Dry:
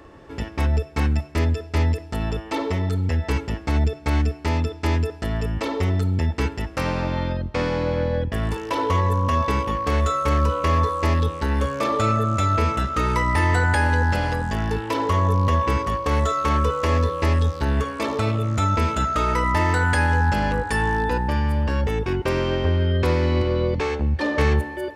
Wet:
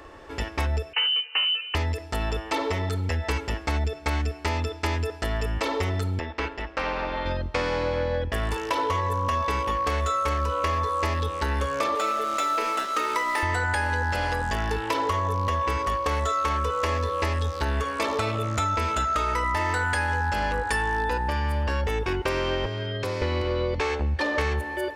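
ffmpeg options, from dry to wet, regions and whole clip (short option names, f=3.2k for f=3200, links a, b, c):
-filter_complex "[0:a]asettb=1/sr,asplit=3[a][b][c];[a]atrim=end=0.934[d];[b]atrim=start=0.93:end=1.75,asetpts=PTS-STARTPTS,afade=t=in:d=0.004:c=qsin,afade=t=out:st=0.816:d=0.004:c=qsin,highpass=52,lowpass=f=2.6k:t=q:w=0.5098,lowpass=f=2.6k:t=q:w=0.6013,lowpass=f=2.6k:t=q:w=0.9,lowpass=f=2.6k:t=q:w=2.563,afreqshift=-3100[e];[c]atrim=start=1.746[f];[d][e]acrossfade=d=0.004:c1=hsin:c2=qsin[g];[g][f]acrossfade=d=0.004:c1=qsin:c2=hsin,asettb=1/sr,asplit=3[h][i][j];[h]atrim=end=6.194[k];[i]atrim=start=6.19:end=7.26,asetpts=PTS-STARTPTS,afade=t=in:d=0.004:c=qsin,afade=t=out:st=1.066:d=0.004:c=qsin,lowpass=3.6k,equalizer=f=100:w=1.2:g=-14,tremolo=f=240:d=0.519[l];[j]atrim=start=7.256[m];[k][l]acrossfade=d=0.004:c1=hsin:c2=qsin[n];[n][m]acrossfade=d=0.004:c1=qsin:c2=hsin,asettb=1/sr,asplit=3[o][p][q];[o]atrim=end=11.954[r];[p]atrim=start=11.95:end=13.43,asetpts=PTS-STARTPTS,afade=t=in:d=0.004:c=qsin,afade=t=out:st=1.476:d=0.004:c=qsin,highpass=f=270:w=0.5412,highpass=f=270:w=1.3066,aeval=exprs='sgn(val(0))*max(abs(val(0))-0.0126,0)':c=same[s];[q]atrim=start=13.426[t];[r][s]acrossfade=d=0.004:c1=hsin:c2=qsin[u];[u][t]acrossfade=d=0.004:c1=qsin:c2=hsin,asettb=1/sr,asplit=3[v][w][x];[v]atrim=end=22.654[y];[w]atrim=start=22.65:end=23.22,asetpts=PTS-STARTPTS,afade=t=in:d=0.004:c=qsin,afade=t=out:st=0.566:d=0.004:c=qsin,acrossover=split=740|4400[z][aa][ab];[z]acompressor=threshold=-26dB:ratio=4[ac];[aa]acompressor=threshold=-41dB:ratio=4[ad];[ab]acompressor=threshold=-47dB:ratio=4[ae];[ac][ad][ae]amix=inputs=3:normalize=0,afreqshift=21[af];[x]atrim=start=23.216[ag];[y][af]acrossfade=d=0.004:c1=hsin:c2=qsin[ah];[ah][ag]acrossfade=d=0.004:c1=qsin:c2=hsin,equalizer=f=160:t=o:w=2:g=-12.5,acompressor=threshold=-26dB:ratio=6,volume=4dB"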